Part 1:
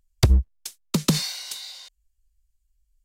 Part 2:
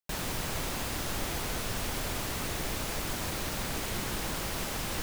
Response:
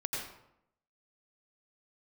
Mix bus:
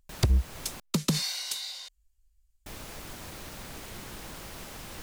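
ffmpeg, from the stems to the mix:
-filter_complex "[0:a]volume=1.06[s0];[1:a]volume=0.376,asplit=3[s1][s2][s3];[s1]atrim=end=0.8,asetpts=PTS-STARTPTS,afade=t=out:st=0.796:d=0.004:c=hsin[s4];[s2]atrim=start=0.8:end=2.66,asetpts=PTS-STARTPTS,volume=0[s5];[s3]atrim=start=2.66,asetpts=PTS-STARTPTS,afade=t=in:d=0.004:c=hsin[s6];[s4][s5][s6]concat=n=3:v=0:a=1[s7];[s0][s7]amix=inputs=2:normalize=0,alimiter=limit=0.158:level=0:latency=1:release=303"

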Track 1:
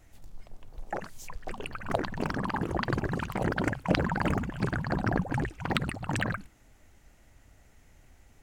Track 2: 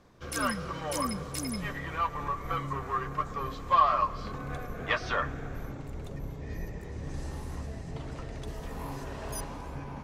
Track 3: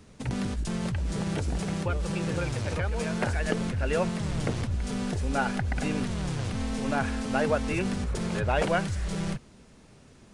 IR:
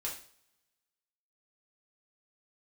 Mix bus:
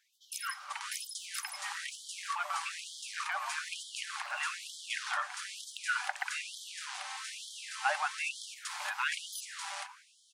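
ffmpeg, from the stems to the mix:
-filter_complex "[0:a]volume=0.251[s0];[1:a]volume=0.668[s1];[2:a]adelay=500,volume=1.06[s2];[s0][s1][s2]amix=inputs=3:normalize=0,asuperstop=centerf=650:order=4:qfactor=4.9,afftfilt=real='re*gte(b*sr/1024,570*pow(3100/570,0.5+0.5*sin(2*PI*1.1*pts/sr)))':imag='im*gte(b*sr/1024,570*pow(3100/570,0.5+0.5*sin(2*PI*1.1*pts/sr)))':win_size=1024:overlap=0.75"

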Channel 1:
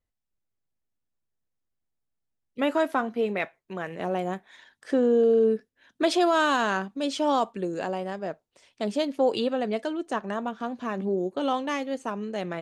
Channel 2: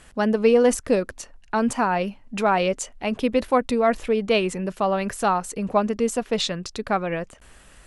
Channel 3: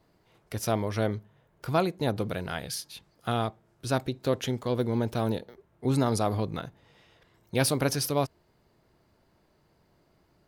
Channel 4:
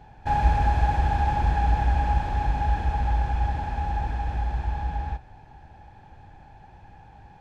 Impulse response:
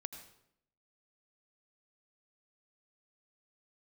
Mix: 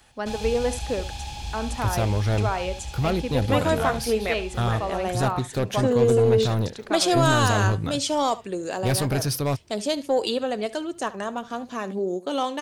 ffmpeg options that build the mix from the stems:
-filter_complex "[0:a]bass=f=250:g=-6,treble=f=4000:g=11,acontrast=87,adelay=900,volume=0.501,asplit=2[s0][s1];[s1]volume=0.119[s2];[1:a]highpass=260,volume=0.447,asplit=2[s3][s4];[s4]volume=0.224[s5];[2:a]equalizer=f=100:t=o:w=1:g=7,asoftclip=type=hard:threshold=0.0794,adelay=1300,volume=1.26[s6];[3:a]aexciter=amount=15.2:drive=4.1:freq=2600,volume=0.2[s7];[s2][s5]amix=inputs=2:normalize=0,aecho=0:1:72:1[s8];[s0][s3][s6][s7][s8]amix=inputs=5:normalize=0,lowshelf=f=130:g=3.5"

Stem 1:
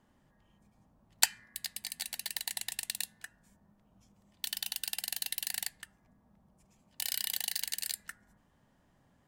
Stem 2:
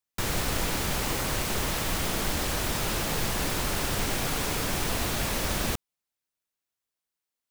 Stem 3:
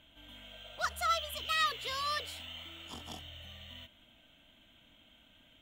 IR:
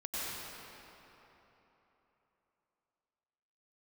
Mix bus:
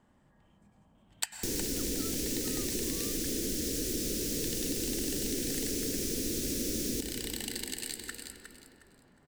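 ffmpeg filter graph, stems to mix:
-filter_complex "[0:a]equalizer=f=8000:t=o:w=0.22:g=10,volume=1.19,asplit=3[s0][s1][s2];[s1]volume=0.266[s3];[s2]volume=0.422[s4];[1:a]firequalizer=gain_entry='entry(170,0);entry(260,13);entry(480,7);entry(790,-29);entry(1700,-6);entry(5700,15)':delay=0.05:min_phase=1,adelay=1250,volume=0.668,asplit=2[s5][s6];[s6]volume=0.398[s7];[2:a]adelay=950,volume=0.2[s8];[3:a]atrim=start_sample=2205[s9];[s3][s7]amix=inputs=2:normalize=0[s10];[s10][s9]afir=irnorm=-1:irlink=0[s11];[s4]aecho=0:1:361|722|1083|1444:1|0.26|0.0676|0.0176[s12];[s0][s5][s8][s11][s12]amix=inputs=5:normalize=0,highshelf=f=4500:g=-8.5,acompressor=threshold=0.0224:ratio=3"

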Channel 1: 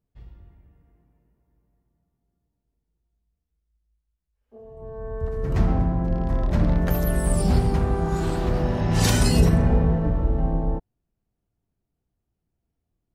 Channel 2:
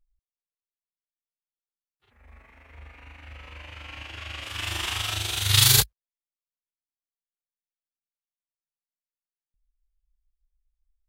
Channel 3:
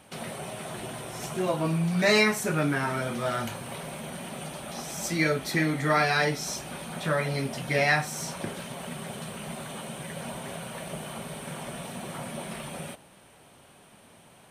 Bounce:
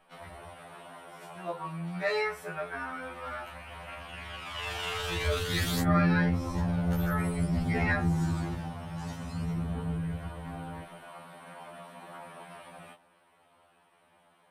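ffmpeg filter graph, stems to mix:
-filter_complex "[0:a]agate=range=0.0224:threshold=0.01:ratio=3:detection=peak,acrossover=split=360|4000[s0][s1][s2];[s0]acompressor=threshold=0.112:ratio=4[s3];[s1]acompressor=threshold=0.00501:ratio=4[s4];[s2]acompressor=threshold=0.00708:ratio=4[s5];[s3][s4][s5]amix=inputs=3:normalize=0,adelay=50,volume=0.75,afade=t=out:st=8.07:d=0.73:silence=0.251189[s6];[1:a]volume=0.282[s7];[2:a]equalizer=f=6400:w=3.4:g=-8.5,volume=0.178[s8];[s6][s7]amix=inputs=2:normalize=0,aphaser=in_gain=1:out_gain=1:delay=1.5:decay=0.48:speed=0.51:type=triangular,alimiter=limit=0.0891:level=0:latency=1:release=12,volume=1[s9];[s8][s9]amix=inputs=2:normalize=0,equalizer=f=1100:w=0.47:g=12.5,afftfilt=real='re*2*eq(mod(b,4),0)':imag='im*2*eq(mod(b,4),0)':win_size=2048:overlap=0.75"

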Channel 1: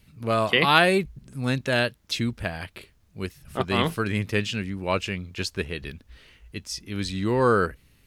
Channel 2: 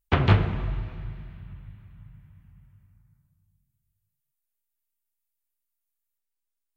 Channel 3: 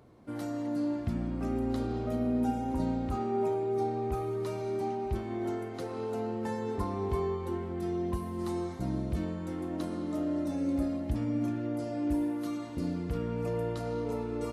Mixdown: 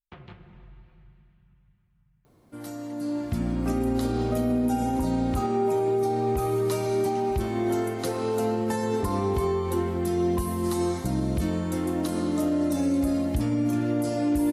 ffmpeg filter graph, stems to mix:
-filter_complex "[1:a]aecho=1:1:5.6:0.54,acompressor=threshold=0.0447:ratio=3,volume=0.126[s0];[2:a]aemphasis=mode=production:type=50kf,dynaudnorm=f=720:g=3:m=3.76,adelay=2250,volume=0.708[s1];[s0][s1]amix=inputs=2:normalize=0,alimiter=limit=0.141:level=0:latency=1:release=80"

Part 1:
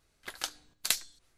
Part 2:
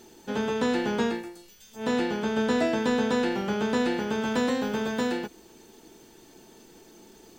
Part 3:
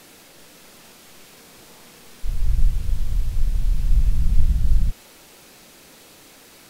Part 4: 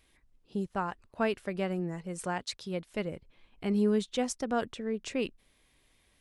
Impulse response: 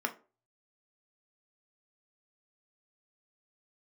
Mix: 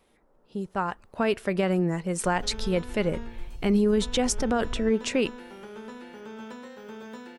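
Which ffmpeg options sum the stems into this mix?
-filter_complex "[1:a]acompressor=threshold=0.0251:ratio=10,adelay=2150,volume=0.266,asplit=2[s0][s1];[s1]volume=0.631[s2];[2:a]lowpass=f=1100:w=0.5412,lowpass=f=1100:w=1.3066,volume=0.133,asplit=2[s3][s4];[s4]volume=0.398[s5];[3:a]dynaudnorm=f=140:g=13:m=4.22,volume=0.75,asplit=2[s6][s7];[s7]volume=0.0841[s8];[4:a]atrim=start_sample=2205[s9];[s2][s5][s8]amix=inputs=3:normalize=0[s10];[s10][s9]afir=irnorm=-1:irlink=0[s11];[s0][s3][s6][s11]amix=inputs=4:normalize=0,alimiter=limit=0.188:level=0:latency=1:release=38"

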